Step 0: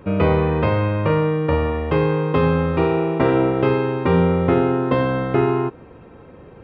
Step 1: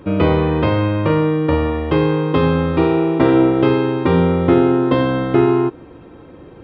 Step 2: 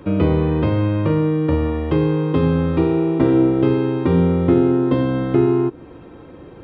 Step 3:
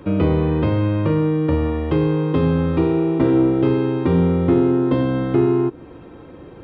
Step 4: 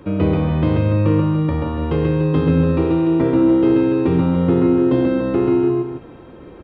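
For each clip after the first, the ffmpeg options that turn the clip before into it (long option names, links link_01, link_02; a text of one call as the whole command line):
ffmpeg -i in.wav -af "superequalizer=6b=2:13b=1.78:14b=1.58,volume=1.5dB" out.wav
ffmpeg -i in.wav -filter_complex "[0:a]acrossover=split=420[link_01][link_02];[link_02]acompressor=threshold=-33dB:ratio=2[link_03];[link_01][link_03]amix=inputs=2:normalize=0" out.wav
ffmpeg -i in.wav -af "asoftclip=type=tanh:threshold=-5.5dB" out.wav
ffmpeg -i in.wav -af "aecho=1:1:134.1|288.6:0.794|0.398,volume=-1.5dB" out.wav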